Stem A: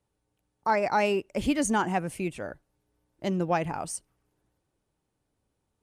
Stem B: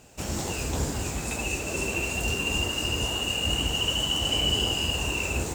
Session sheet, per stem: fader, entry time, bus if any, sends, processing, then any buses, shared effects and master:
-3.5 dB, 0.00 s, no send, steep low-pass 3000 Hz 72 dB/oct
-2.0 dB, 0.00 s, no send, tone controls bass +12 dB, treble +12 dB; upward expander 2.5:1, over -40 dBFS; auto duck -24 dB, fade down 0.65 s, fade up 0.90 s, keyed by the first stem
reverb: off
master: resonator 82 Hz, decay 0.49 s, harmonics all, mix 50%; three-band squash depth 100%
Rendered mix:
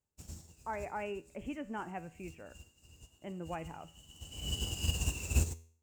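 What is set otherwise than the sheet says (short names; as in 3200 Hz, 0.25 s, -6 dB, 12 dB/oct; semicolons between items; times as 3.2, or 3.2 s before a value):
stem A -3.5 dB -> -10.0 dB; master: missing three-band squash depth 100%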